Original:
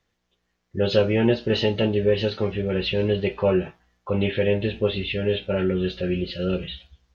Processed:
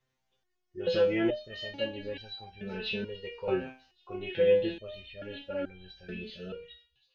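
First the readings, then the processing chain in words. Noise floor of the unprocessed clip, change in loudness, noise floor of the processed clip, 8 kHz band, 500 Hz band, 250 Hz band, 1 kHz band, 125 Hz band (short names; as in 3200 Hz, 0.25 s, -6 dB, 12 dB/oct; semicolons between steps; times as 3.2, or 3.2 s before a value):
-75 dBFS, -8.5 dB, -79 dBFS, n/a, -8.0 dB, -11.5 dB, -9.5 dB, -19.0 dB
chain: ending faded out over 0.92 s; thin delay 1.121 s, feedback 60%, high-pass 5000 Hz, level -19.5 dB; stepped resonator 2.3 Hz 130–790 Hz; gain +5 dB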